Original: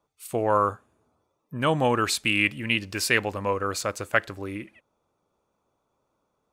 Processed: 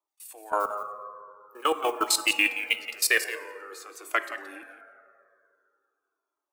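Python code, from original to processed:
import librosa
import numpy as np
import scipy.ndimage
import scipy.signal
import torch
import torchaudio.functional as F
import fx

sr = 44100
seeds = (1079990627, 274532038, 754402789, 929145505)

y = fx.block_float(x, sr, bits=7, at=(0.6, 3.18))
y = scipy.signal.sosfilt(scipy.signal.butter(12, 310.0, 'highpass', fs=sr, output='sos'), y)
y = fx.high_shelf(y, sr, hz=8600.0, db=11.0)
y = fx.notch(y, sr, hz=530.0, q=12.0)
y = fx.level_steps(y, sr, step_db=23)
y = y + 10.0 ** (-11.5 / 20.0) * np.pad(y, (int(173 * sr / 1000.0), 0))[:len(y)]
y = fx.rev_fdn(y, sr, rt60_s=2.5, lf_ratio=1.05, hf_ratio=0.35, size_ms=38.0, drr_db=9.5)
y = fx.comb_cascade(y, sr, direction='falling', hz=0.47)
y = F.gain(torch.from_numpy(y), 5.5).numpy()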